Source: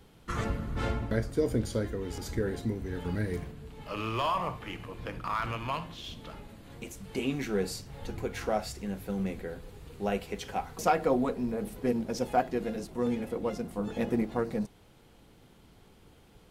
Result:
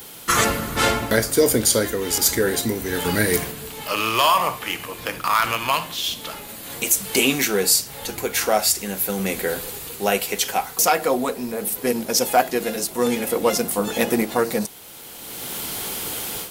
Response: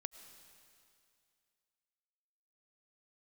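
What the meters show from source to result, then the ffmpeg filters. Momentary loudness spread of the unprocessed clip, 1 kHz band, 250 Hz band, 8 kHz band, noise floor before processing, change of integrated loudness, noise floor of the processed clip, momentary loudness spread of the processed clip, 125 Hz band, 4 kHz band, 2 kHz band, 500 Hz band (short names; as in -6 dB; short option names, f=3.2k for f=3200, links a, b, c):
13 LU, +11.0 dB, +7.0 dB, +25.5 dB, -58 dBFS, +12.0 dB, -38 dBFS, 11 LU, +3.5 dB, +19.5 dB, +16.0 dB, +10.0 dB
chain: -af "apsyclip=19.5dB,aemphasis=mode=production:type=riaa,dynaudnorm=f=400:g=3:m=11.5dB,volume=-3dB"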